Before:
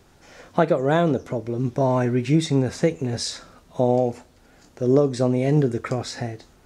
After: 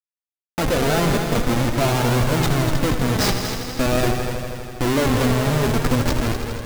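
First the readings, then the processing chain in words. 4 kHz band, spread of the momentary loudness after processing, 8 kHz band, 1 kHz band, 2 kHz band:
+8.5 dB, 7 LU, +8.5 dB, +4.0 dB, +9.0 dB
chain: low shelf 110 Hz +4 dB; Schmitt trigger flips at -26 dBFS; on a send: multi-head echo 81 ms, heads all three, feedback 66%, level -11.5 dB; on the sum: flange 0.45 Hz, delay 1.7 ms, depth 3.4 ms, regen +54%; gain +7 dB

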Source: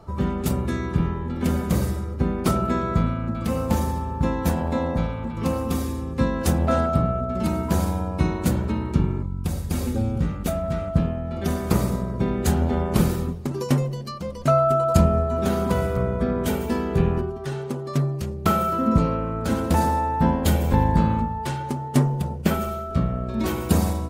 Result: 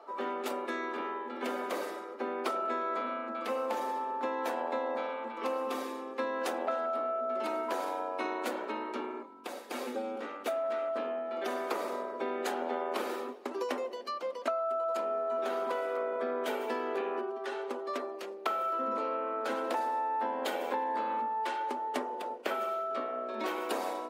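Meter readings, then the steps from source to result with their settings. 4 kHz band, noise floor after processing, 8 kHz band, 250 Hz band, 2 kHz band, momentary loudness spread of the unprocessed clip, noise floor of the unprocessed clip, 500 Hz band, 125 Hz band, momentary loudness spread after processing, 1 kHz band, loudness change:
-7.0 dB, -43 dBFS, -15.0 dB, -18.0 dB, -4.0 dB, 7 LU, -31 dBFS, -6.5 dB, under -40 dB, 5 LU, -5.5 dB, -11.0 dB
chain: elliptic high-pass 240 Hz, stop band 40 dB; three-band isolator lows -22 dB, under 390 Hz, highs -13 dB, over 3900 Hz; compressor 12:1, threshold -29 dBFS, peak gain reduction 13.5 dB

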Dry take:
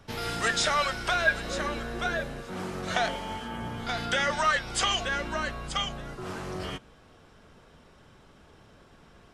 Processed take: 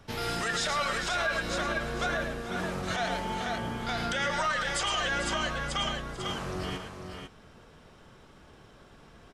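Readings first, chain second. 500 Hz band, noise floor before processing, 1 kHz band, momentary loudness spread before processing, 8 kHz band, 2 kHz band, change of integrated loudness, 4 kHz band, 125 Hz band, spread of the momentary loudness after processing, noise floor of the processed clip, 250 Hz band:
-1.0 dB, -56 dBFS, -1.5 dB, 12 LU, -1.5 dB, -2.0 dB, -1.5 dB, -1.5 dB, +0.5 dB, 7 LU, -55 dBFS, +0.5 dB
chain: tapped delay 0.109/0.442/0.497 s -8.5/-14.5/-7.5 dB; limiter -20.5 dBFS, peak gain reduction 9.5 dB

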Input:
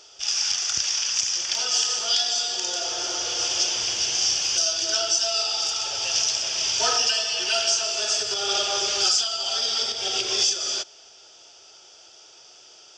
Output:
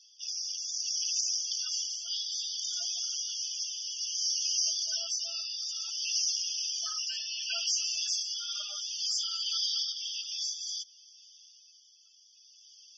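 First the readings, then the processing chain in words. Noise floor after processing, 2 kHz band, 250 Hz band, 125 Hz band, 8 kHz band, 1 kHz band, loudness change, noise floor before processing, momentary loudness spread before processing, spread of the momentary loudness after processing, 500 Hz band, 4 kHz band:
-60 dBFS, -16.0 dB, under -40 dB, n/a, -8.5 dB, -24.0 dB, -9.0 dB, -50 dBFS, 5 LU, 6 LU, -29.0 dB, -9.0 dB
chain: passive tone stack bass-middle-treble 10-0-10; soft clip -18.5 dBFS, distortion -16 dB; rotary speaker horn 0.6 Hz; loudest bins only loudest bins 64; gain -2.5 dB

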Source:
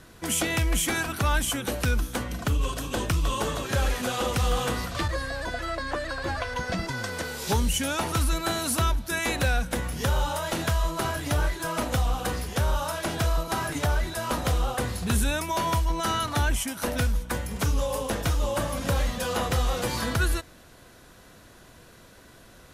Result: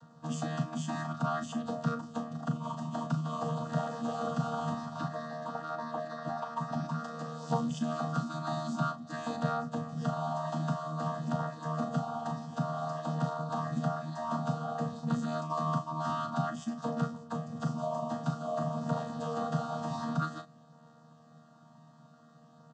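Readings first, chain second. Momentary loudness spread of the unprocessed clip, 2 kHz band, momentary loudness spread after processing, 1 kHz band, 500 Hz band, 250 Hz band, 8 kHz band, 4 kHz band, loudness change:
5 LU, -16.0 dB, 5 LU, -4.5 dB, -6.5 dB, -2.0 dB, -20.5 dB, -17.0 dB, -7.5 dB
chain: chord vocoder bare fifth, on D#3; high shelf 5400 Hz -4.5 dB; fixed phaser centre 920 Hz, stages 4; doubler 37 ms -9 dB

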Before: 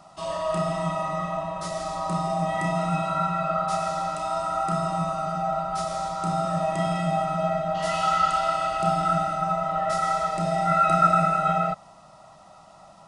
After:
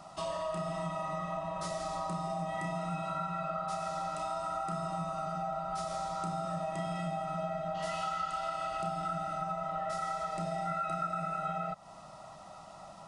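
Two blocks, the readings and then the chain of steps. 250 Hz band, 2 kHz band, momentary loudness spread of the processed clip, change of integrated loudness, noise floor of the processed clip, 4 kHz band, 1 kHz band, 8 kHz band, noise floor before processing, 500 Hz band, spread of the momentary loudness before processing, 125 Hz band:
-10.5 dB, -10.5 dB, 3 LU, -11.0 dB, -51 dBFS, -9.5 dB, -11.0 dB, -9.0 dB, -50 dBFS, -10.0 dB, 8 LU, -10.5 dB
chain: compressor 5:1, threshold -34 dBFS, peak gain reduction 18 dB

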